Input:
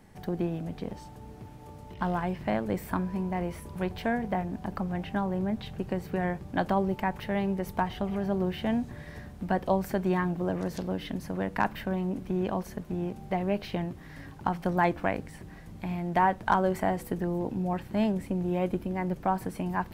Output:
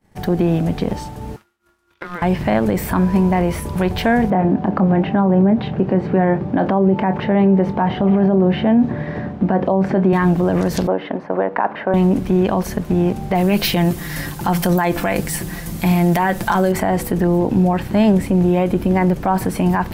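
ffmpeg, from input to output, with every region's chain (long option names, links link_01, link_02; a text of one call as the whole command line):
ffmpeg -i in.wav -filter_complex "[0:a]asettb=1/sr,asplit=3[link_01][link_02][link_03];[link_01]atrim=end=1.364[link_04];[link_02]atrim=start=1.36:end=2.22,asetpts=PTS-STARTPTS,afade=type=in:duration=0.004:curve=qsin,afade=type=out:start_time=0.856:duration=0.004:curve=qsin,highpass=820,acompressor=threshold=-37dB:ratio=8:attack=3.2:release=140:knee=1:detection=peak,aeval=exprs='val(0)*sin(2*PI*530*n/s)':channel_layout=same[link_05];[link_03]atrim=start=2.216[link_06];[link_04][link_05]acrossfade=duration=0.004:curve1=hsin:curve2=qsin[link_07];[link_07][link_06]acrossfade=duration=0.004:curve1=qsin:curve2=hsin,asettb=1/sr,asplit=3[link_08][link_09][link_10];[link_08]atrim=end=4.304[link_11];[link_09]atrim=start=4.3:end=10.13,asetpts=PTS-STARTPTS,afade=type=in:duration=0.004:curve=qsin,afade=type=out:start_time=5.826:duration=0.004:curve=qsin,highpass=170,lowpass=3200,tiltshelf=frequency=1200:gain=6,asplit=2[link_12][link_13];[link_13]adelay=26,volume=-12.5dB[link_14];[link_12][link_14]amix=inputs=2:normalize=0,atrim=end_sample=257103[link_15];[link_10]atrim=start=10.126[link_16];[link_11][link_15]acrossfade=duration=0.004:curve1=hsin:curve2=qsin[link_17];[link_17][link_16]acrossfade=duration=0.004:curve1=qsin:curve2=hsin,asettb=1/sr,asplit=3[link_18][link_19][link_20];[link_18]atrim=end=10.874[link_21];[link_19]atrim=start=10.87:end=11.94,asetpts=PTS-STARTPTS,afade=type=in:duration=0.004:curve=qsin,afade=type=out:start_time=1.066:duration=0.004:curve=qsin,highpass=610,lowpass=2200,tiltshelf=frequency=1300:gain=9.5[link_22];[link_20]atrim=start=11.936[link_23];[link_21][link_22]acrossfade=duration=0.004:curve1=hsin:curve2=qsin[link_24];[link_24][link_23]acrossfade=duration=0.004:curve1=qsin:curve2=hsin,asettb=1/sr,asplit=3[link_25][link_26][link_27];[link_25]atrim=end=13.354[link_28];[link_26]atrim=start=13.35:end=16.72,asetpts=PTS-STARTPTS,afade=type=in:duration=0.004:curve=qsin,afade=type=out:start_time=3.366:duration=0.004:curve=qsin,aemphasis=mode=production:type=75kf,aecho=1:1:5.8:0.49,atrim=end_sample=148617[link_29];[link_27]atrim=start=16.716[link_30];[link_28][link_29]acrossfade=duration=0.004:curve1=hsin:curve2=qsin[link_31];[link_31][link_30]acrossfade=duration=0.004:curve1=qsin:curve2=hsin,agate=range=-33dB:threshold=-43dB:ratio=3:detection=peak,alimiter=level_in=23dB:limit=-1dB:release=50:level=0:latency=1,volume=-6dB" out.wav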